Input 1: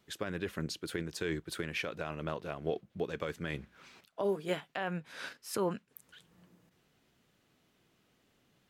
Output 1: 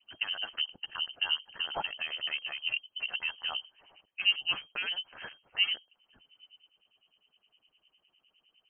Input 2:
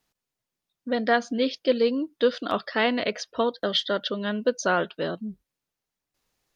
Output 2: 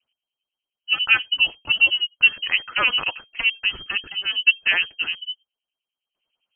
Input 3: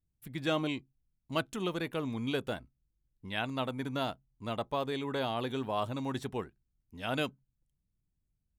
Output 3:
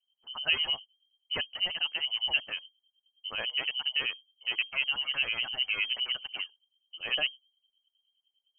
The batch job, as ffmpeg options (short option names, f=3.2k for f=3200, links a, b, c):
-filter_complex "[0:a]acrossover=split=240|760|2300[a][b][c][d];[c]acrusher=bits=5:dc=4:mix=0:aa=0.000001[e];[a][b][e][d]amix=inputs=4:normalize=0,acrossover=split=1300[f][g];[f]aeval=exprs='val(0)*(1-1/2+1/2*cos(2*PI*9.8*n/s))':c=same[h];[g]aeval=exprs='val(0)*(1-1/2-1/2*cos(2*PI*9.8*n/s))':c=same[i];[h][i]amix=inputs=2:normalize=0,lowpass=f=2.7k:t=q:w=0.5098,lowpass=f=2.7k:t=q:w=0.6013,lowpass=f=2.7k:t=q:w=0.9,lowpass=f=2.7k:t=q:w=2.563,afreqshift=-3200,volume=8dB"